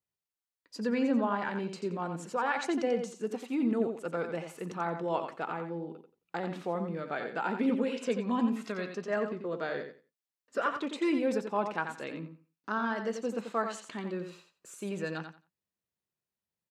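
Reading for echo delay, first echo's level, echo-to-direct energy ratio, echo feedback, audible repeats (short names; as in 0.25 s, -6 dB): 88 ms, -7.5 dB, -7.5 dB, 19%, 2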